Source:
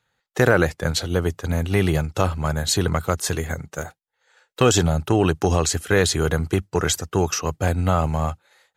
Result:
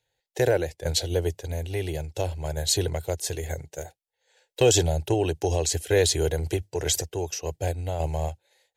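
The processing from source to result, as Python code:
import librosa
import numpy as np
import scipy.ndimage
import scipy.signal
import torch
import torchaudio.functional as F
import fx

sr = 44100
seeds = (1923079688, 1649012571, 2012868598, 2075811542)

y = fx.transient(x, sr, attack_db=1, sustain_db=8, at=(6.37, 7.04), fade=0.02)
y = fx.fixed_phaser(y, sr, hz=510.0, stages=4)
y = fx.tremolo_random(y, sr, seeds[0], hz=3.5, depth_pct=55)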